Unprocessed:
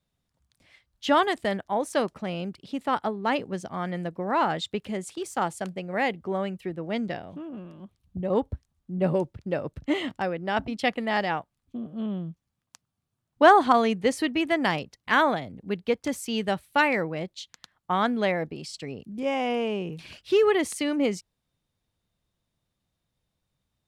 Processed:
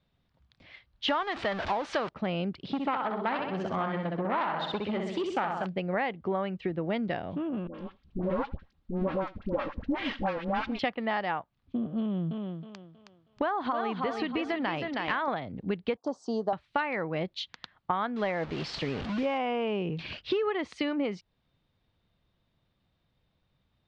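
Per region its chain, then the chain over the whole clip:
0:01.08–0:02.09: converter with a step at zero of −26.5 dBFS + low-shelf EQ 500 Hz −6.5 dB
0:02.62–0:05.66: repeating echo 64 ms, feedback 49%, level −4.5 dB + saturating transformer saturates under 1,700 Hz
0:07.67–0:10.79: lower of the sound and its delayed copy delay 3.7 ms + all-pass dispersion highs, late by 76 ms, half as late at 850 Hz + single-tap delay 84 ms −23.5 dB
0:11.99–0:15.28: downward compressor 2.5 to 1, threshold −27 dBFS + feedback echo with a high-pass in the loop 318 ms, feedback 38%, high-pass 260 Hz, level −6 dB
0:15.97–0:16.53: Chebyshev band-stop filter 940–5,500 Hz + loudspeaker in its box 270–8,500 Hz, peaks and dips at 720 Hz +8 dB, 1,100 Hz +5 dB, 3,500 Hz −3 dB
0:18.16–0:19.38: linear delta modulator 64 kbit/s, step −35.5 dBFS + high-shelf EQ 10,000 Hz +3 dB
whole clip: low-pass filter 4,200 Hz 24 dB per octave; dynamic equaliser 1,100 Hz, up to +6 dB, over −36 dBFS, Q 0.98; downward compressor 8 to 1, threshold −33 dBFS; level +6 dB

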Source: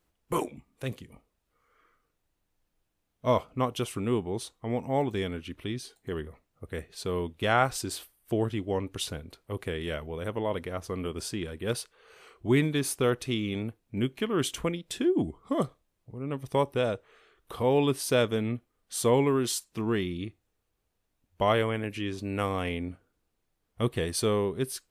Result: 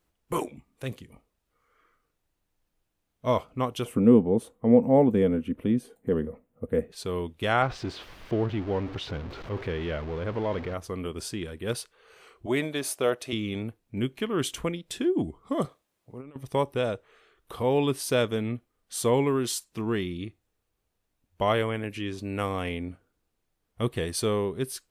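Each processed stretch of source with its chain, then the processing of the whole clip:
0:03.85–0:06.92: parametric band 4,800 Hz −14.5 dB 1.4 octaves + notch filter 3,900 Hz, Q 26 + hollow resonant body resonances 230/480 Hz, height 15 dB, ringing for 35 ms
0:07.62–0:10.74: converter with a step at zero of −33 dBFS + high-frequency loss of the air 230 metres
0:12.46–0:13.33: high-pass filter 400 Hz 6 dB per octave + parametric band 620 Hz +10.5 dB 0.46 octaves
0:15.65–0:16.36: high-pass filter 310 Hz 6 dB per octave + compressor whose output falls as the input rises −41 dBFS, ratio −0.5
whole clip: no processing

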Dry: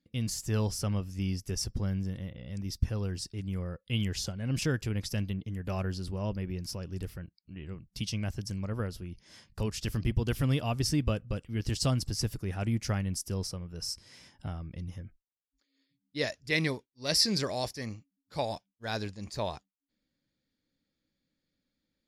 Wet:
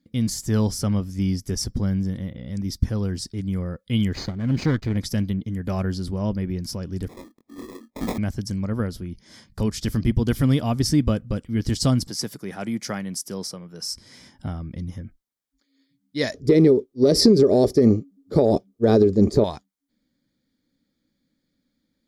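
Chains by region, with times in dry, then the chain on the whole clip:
0:04.13–0:04.97: lower of the sound and its delayed copy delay 0.45 ms + low-pass filter 5,400 Hz 24 dB per octave + slack as between gear wheels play −53 dBFS
0:07.08–0:08.18: Butterworth high-pass 230 Hz 96 dB per octave + sample-rate reduction 1,500 Hz + double-tracking delay 22 ms −2 dB
0:12.07–0:13.92: high-pass filter 170 Hz 24 dB per octave + parametric band 250 Hz −7 dB 0.97 octaves
0:16.34–0:19.44: low shelf with overshoot 780 Hz +13 dB, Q 1.5 + hollow resonant body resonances 400/1,200 Hz, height 14 dB, ringing for 40 ms + downward compressor 16 to 1, threshold −19 dBFS
whole clip: parametric band 240 Hz +7 dB 0.86 octaves; notch filter 2,700 Hz, Q 6; level +6 dB

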